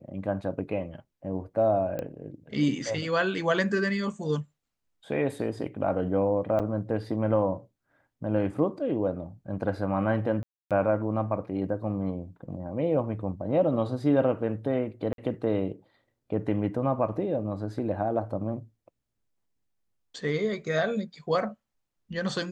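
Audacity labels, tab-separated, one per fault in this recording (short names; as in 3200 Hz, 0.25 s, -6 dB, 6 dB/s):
1.990000	1.990000	pop -20 dBFS
6.590000	6.600000	gap 7.5 ms
10.430000	10.710000	gap 0.277 s
15.130000	15.180000	gap 52 ms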